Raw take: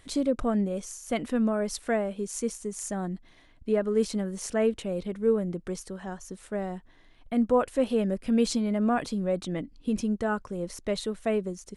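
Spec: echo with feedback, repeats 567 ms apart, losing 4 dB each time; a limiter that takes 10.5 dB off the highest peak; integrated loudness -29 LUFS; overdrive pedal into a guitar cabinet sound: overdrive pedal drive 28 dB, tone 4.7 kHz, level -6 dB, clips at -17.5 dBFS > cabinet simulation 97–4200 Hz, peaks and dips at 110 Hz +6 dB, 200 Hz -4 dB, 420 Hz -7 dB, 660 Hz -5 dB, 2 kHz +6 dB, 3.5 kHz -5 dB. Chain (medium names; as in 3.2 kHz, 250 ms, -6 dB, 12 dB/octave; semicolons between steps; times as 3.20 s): peak limiter -23.5 dBFS; feedback delay 567 ms, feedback 63%, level -4 dB; overdrive pedal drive 28 dB, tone 4.7 kHz, level -6 dB, clips at -17.5 dBFS; cabinet simulation 97–4200 Hz, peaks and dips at 110 Hz +6 dB, 200 Hz -4 dB, 420 Hz -7 dB, 660 Hz -5 dB, 2 kHz +6 dB, 3.5 kHz -5 dB; trim -1 dB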